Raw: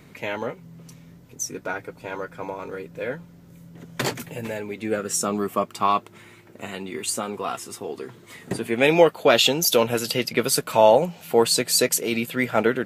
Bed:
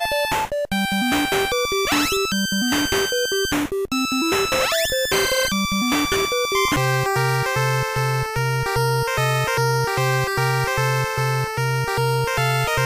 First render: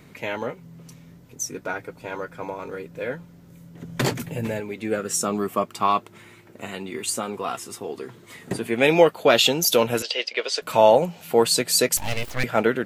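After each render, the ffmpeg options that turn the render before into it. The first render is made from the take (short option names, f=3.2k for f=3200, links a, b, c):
-filter_complex "[0:a]asettb=1/sr,asplit=3[a][b][c];[a]atrim=end=3.824[d];[b]atrim=start=3.82:end=4.6,asetpts=PTS-STARTPTS,afade=t=in:d=0.004:c=qsin,afade=t=out:st=0.776:d=0.004:c=qsin,lowshelf=f=290:g=8[e];[c]atrim=start=4.596[f];[d][e]acrossfade=d=0.004:c1=hsin:c2=qsin[g];[g][f]acrossfade=d=0.004:c1=qsin:c2=hsin,asettb=1/sr,asplit=3[h][i][j];[h]atrim=end=10.024[k];[i]atrim=start=10.02:end=10.62,asetpts=PTS-STARTPTS,afade=t=in:d=0.004:c=qsin,afade=t=out:st=0.596:d=0.004:c=qsin,highpass=f=470:w=0.5412,highpass=f=470:w=1.3066,equalizer=f=870:t=q:w=4:g=-4,equalizer=f=1.3k:t=q:w=4:g=-7,equalizer=f=3k:t=q:w=4:g=4,lowpass=f=5.8k:w=0.5412,lowpass=f=5.8k:w=1.3066[l];[j]atrim=start=10.616[m];[k][l]acrossfade=d=0.004:c1=hsin:c2=qsin[n];[n][m]acrossfade=d=0.004:c1=qsin:c2=hsin,asettb=1/sr,asplit=3[o][p][q];[o]atrim=end=11.974[r];[p]atrim=start=11.97:end=12.44,asetpts=PTS-STARTPTS,afade=t=in:d=0.004:c=qsin,afade=t=out:st=0.466:d=0.004:c=qsin,aeval=exprs='abs(val(0))':c=same[s];[q]atrim=start=12.436[t];[r][s]acrossfade=d=0.004:c1=hsin:c2=qsin[u];[u][t]acrossfade=d=0.004:c1=qsin:c2=hsin"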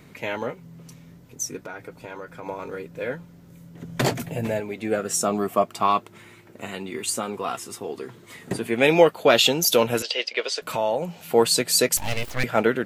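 -filter_complex "[0:a]asettb=1/sr,asplit=3[a][b][c];[a]atrim=end=1.564[d];[b]atrim=start=1.56:end=2.46,asetpts=PTS-STARTPTS,afade=t=in:d=0.004:c=qsin,afade=t=out:st=0.896:d=0.004:c=qsin,acompressor=threshold=-32dB:ratio=5:attack=3.2:release=140:knee=1:detection=peak[e];[c]atrim=start=2.456[f];[d][e]acrossfade=d=0.004:c1=hsin:c2=qsin[g];[g][f]acrossfade=d=0.004:c1=qsin:c2=hsin,asettb=1/sr,asplit=3[h][i][j];[h]atrim=end=4.004[k];[i]atrim=start=4:end=5.83,asetpts=PTS-STARTPTS,afade=t=in:d=0.004:c=qsin,afade=t=out:st=1.826:d=0.004:c=qsin,equalizer=f=680:t=o:w=0.29:g=9[l];[j]atrim=start=5.826[m];[k][l]acrossfade=d=0.004:c1=hsin:c2=qsin[n];[n][m]acrossfade=d=0.004:c1=qsin:c2=hsin,asettb=1/sr,asplit=3[o][p][q];[o]atrim=end=10.534[r];[p]atrim=start=10.53:end=11.18,asetpts=PTS-STARTPTS,afade=t=in:d=0.004:c=qsin,afade=t=out:st=0.646:d=0.004:c=qsin,acompressor=threshold=-26dB:ratio=2:attack=3.2:release=140:knee=1:detection=peak[s];[q]atrim=start=11.176[t];[r][s]acrossfade=d=0.004:c1=hsin:c2=qsin[u];[u][t]acrossfade=d=0.004:c1=qsin:c2=hsin"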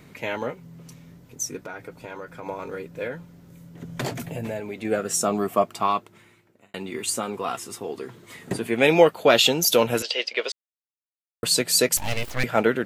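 -filter_complex "[0:a]asettb=1/sr,asplit=3[a][b][c];[a]atrim=end=3.074[d];[b]atrim=start=3.07:end=4.85,asetpts=PTS-STARTPTS,afade=t=in:d=0.004:c=qsin,afade=t=out:st=1.776:d=0.004:c=qsin,acompressor=threshold=-29dB:ratio=2:attack=3.2:release=140:knee=1:detection=peak[e];[c]atrim=start=4.846[f];[d][e]acrossfade=d=0.004:c1=hsin:c2=qsin[g];[g][f]acrossfade=d=0.004:c1=qsin:c2=hsin,asplit=4[h][i][j][k];[h]atrim=end=6.74,asetpts=PTS-STARTPTS,afade=t=out:st=5.64:d=1.1[l];[i]atrim=start=6.74:end=10.52,asetpts=PTS-STARTPTS,afade=t=in:d=0.004:c=hsin,afade=t=out:st=3.776:d=0.004:c=hsin[m];[j]atrim=start=10.52:end=11.43,asetpts=PTS-STARTPTS,volume=0[n];[k]atrim=start=11.43,asetpts=PTS-STARTPTS,afade=t=in:d=0.004:c=hsin[o];[l][m][n][o]concat=n=4:v=0:a=1"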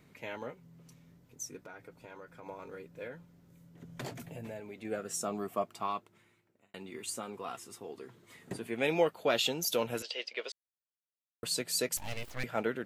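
-af "volume=-12.5dB"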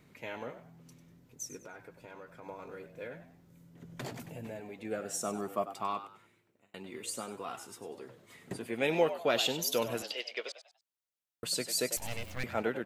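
-filter_complex "[0:a]asplit=4[a][b][c][d];[b]adelay=97,afreqshift=87,volume=-12dB[e];[c]adelay=194,afreqshift=174,volume=-22.2dB[f];[d]adelay=291,afreqshift=261,volume=-32.3dB[g];[a][e][f][g]amix=inputs=4:normalize=0"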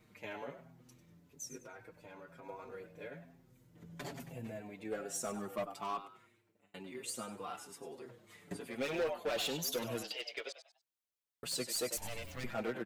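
-filter_complex "[0:a]asoftclip=type=hard:threshold=-29.5dB,asplit=2[a][b];[b]adelay=6,afreqshift=-1.1[c];[a][c]amix=inputs=2:normalize=1"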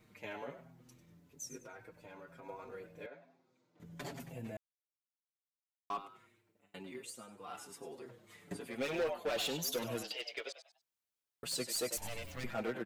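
-filter_complex "[0:a]asettb=1/sr,asplit=3[a][b][c];[a]atrim=end=3.064[d];[b]atrim=start=3.06:end=3.8,asetpts=PTS-STARTPTS,afade=t=in:d=0.004:c=qsin,afade=t=out:st=0.736:d=0.004:c=qsin,highpass=400,equalizer=f=470:t=q:w=4:g=-3,equalizer=f=1.8k:t=q:w=4:g=-9,equalizer=f=3k:t=q:w=4:g=-8,equalizer=f=5.4k:t=q:w=4:g=-4,lowpass=f=5.6k:w=0.5412,lowpass=f=5.6k:w=1.3066[e];[c]atrim=start=3.796[f];[d][e]acrossfade=d=0.004:c1=hsin:c2=qsin[g];[g][f]acrossfade=d=0.004:c1=qsin:c2=hsin,asplit=5[h][i][j][k][l];[h]atrim=end=4.57,asetpts=PTS-STARTPTS,afade=t=out:st=4.566:d=0.004:c=hsin[m];[i]atrim=start=4.57:end=5.9,asetpts=PTS-STARTPTS,volume=0[n];[j]atrim=start=5.9:end=7.2,asetpts=PTS-STARTPTS,afade=t=in:d=0.004:c=hsin,afade=t=out:st=1.05:d=0.25:c=qua:silence=0.375837[o];[k]atrim=start=7.2:end=7.32,asetpts=PTS-STARTPTS,volume=-8.5dB[p];[l]atrim=start=7.32,asetpts=PTS-STARTPTS,afade=t=in:d=0.25:c=qua:silence=0.375837[q];[m][n][o][p][q]concat=n=5:v=0:a=1"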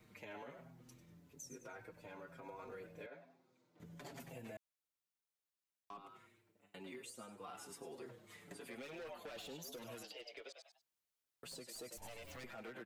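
-filter_complex "[0:a]acrossover=split=300|990[a][b][c];[a]acompressor=threshold=-55dB:ratio=4[d];[b]acompressor=threshold=-49dB:ratio=4[e];[c]acompressor=threshold=-50dB:ratio=4[f];[d][e][f]amix=inputs=3:normalize=0,alimiter=level_in=17dB:limit=-24dB:level=0:latency=1:release=109,volume=-17dB"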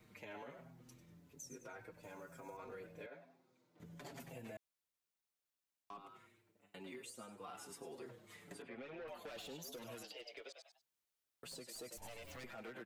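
-filter_complex "[0:a]asettb=1/sr,asplit=3[a][b][c];[a]atrim=end=2.034[d];[b]atrim=start=2.03:end=2.57,asetpts=PTS-STARTPTS,afade=t=in:d=0.004:c=qsin,afade=t=out:st=0.536:d=0.004:c=qsin,highshelf=f=5.1k:t=q:w=1.5:g=9[e];[c]atrim=start=2.566[f];[d][e]acrossfade=d=0.004:c1=hsin:c2=qsin[g];[g][f]acrossfade=d=0.004:c1=qsin:c2=hsin,asettb=1/sr,asplit=3[h][i][j];[h]atrim=end=8.624[k];[i]atrim=start=8.62:end=9.08,asetpts=PTS-STARTPTS,afade=t=in:d=0.004:c=qsin,afade=t=out:st=0.456:d=0.004:c=qsin,lowpass=2.4k[l];[j]atrim=start=9.076[m];[k][l]acrossfade=d=0.004:c1=hsin:c2=qsin[n];[n][m]acrossfade=d=0.004:c1=qsin:c2=hsin"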